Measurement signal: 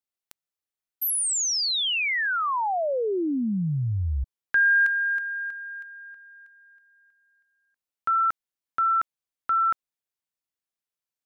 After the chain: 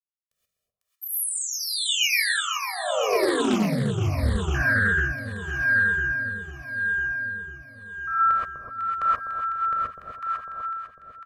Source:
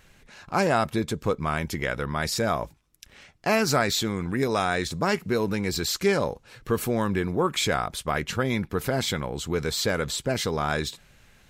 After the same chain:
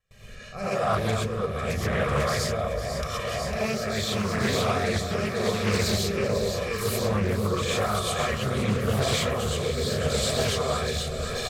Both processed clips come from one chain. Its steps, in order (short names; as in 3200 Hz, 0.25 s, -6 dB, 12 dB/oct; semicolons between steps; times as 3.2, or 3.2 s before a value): gate with hold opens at -45 dBFS, closes at -51 dBFS, hold 0.192 s, range -29 dB; comb 1.7 ms, depth 92%; reverse; compressor 12:1, threshold -33 dBFS; reverse; echo with dull and thin repeats by turns 0.25 s, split 1000 Hz, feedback 82%, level -4 dB; rotary speaker horn 0.85 Hz; non-linear reverb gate 0.15 s rising, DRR -7.5 dB; Doppler distortion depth 0.36 ms; gain +3.5 dB